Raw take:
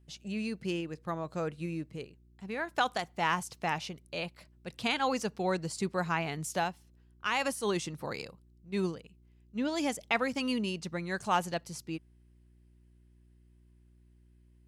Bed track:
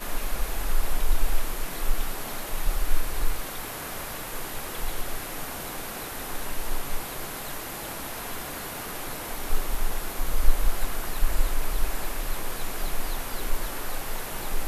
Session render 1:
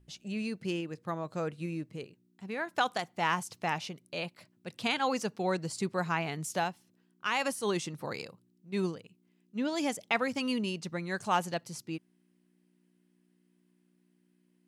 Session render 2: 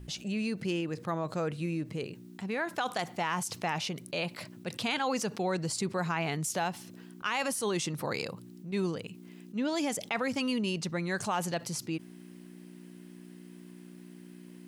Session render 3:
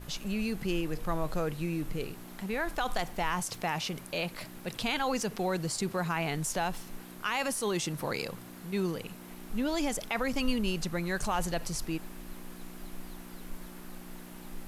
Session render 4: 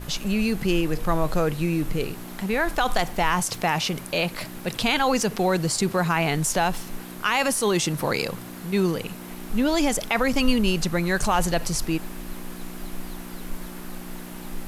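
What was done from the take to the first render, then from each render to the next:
hum removal 60 Hz, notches 2
brickwall limiter −22 dBFS, peak gain reduction 6.5 dB; envelope flattener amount 50%
mix in bed track −16.5 dB
level +9 dB

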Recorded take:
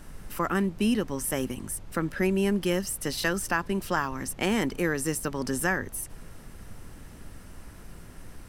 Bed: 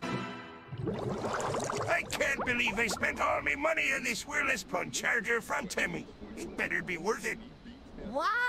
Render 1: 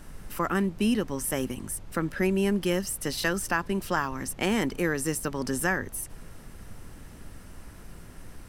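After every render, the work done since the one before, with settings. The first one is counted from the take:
no processing that can be heard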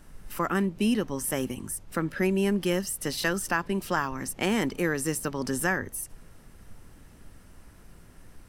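noise reduction from a noise print 6 dB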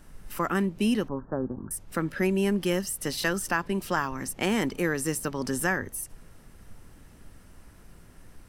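0:01.08–0:01.71: Butterworth low-pass 1,600 Hz 96 dB per octave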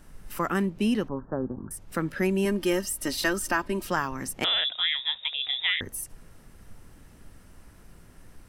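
0:00.70–0:01.82: high-shelf EQ 6,100 Hz −6 dB
0:02.45–0:03.87: comb filter 3.2 ms, depth 59%
0:04.44–0:05.81: voice inversion scrambler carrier 3,700 Hz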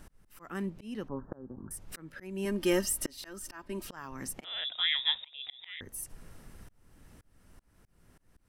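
volume swells 629 ms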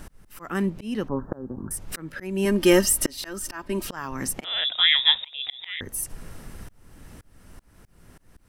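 level +10.5 dB

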